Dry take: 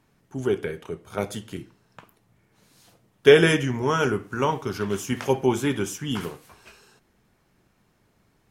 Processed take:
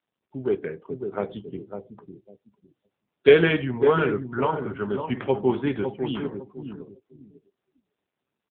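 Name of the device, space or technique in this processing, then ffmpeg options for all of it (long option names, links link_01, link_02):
mobile call with aggressive noise cancelling: -filter_complex "[0:a]highpass=frequency=140:poles=1,lowpass=11000,asplit=2[link_01][link_02];[link_02]adelay=552,lowpass=frequency=1100:poles=1,volume=-6.5dB,asplit=2[link_03][link_04];[link_04]adelay=552,lowpass=frequency=1100:poles=1,volume=0.28,asplit=2[link_05][link_06];[link_06]adelay=552,lowpass=frequency=1100:poles=1,volume=0.28,asplit=2[link_07][link_08];[link_08]adelay=552,lowpass=frequency=1100:poles=1,volume=0.28[link_09];[link_01][link_03][link_05][link_07][link_09]amix=inputs=5:normalize=0,afftdn=noise_reduction=31:noise_floor=-40" -ar 8000 -c:a libopencore_amrnb -b:a 7950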